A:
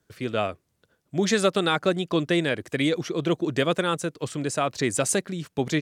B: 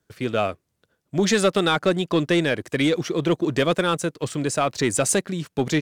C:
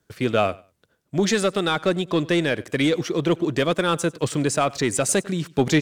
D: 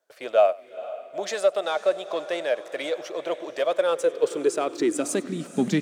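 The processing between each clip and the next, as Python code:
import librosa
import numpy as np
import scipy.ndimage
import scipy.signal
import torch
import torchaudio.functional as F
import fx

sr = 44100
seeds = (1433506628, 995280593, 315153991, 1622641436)

y1 = fx.leveller(x, sr, passes=1)
y2 = fx.rider(y1, sr, range_db=10, speed_s=0.5)
y2 = fx.echo_feedback(y2, sr, ms=97, feedback_pct=20, wet_db=-22.5)
y3 = fx.echo_diffused(y2, sr, ms=476, feedback_pct=52, wet_db=-15.0)
y3 = fx.filter_sweep_highpass(y3, sr, from_hz=610.0, to_hz=200.0, start_s=3.72, end_s=5.71, q=5.7)
y3 = y3 * 10.0 ** (-8.5 / 20.0)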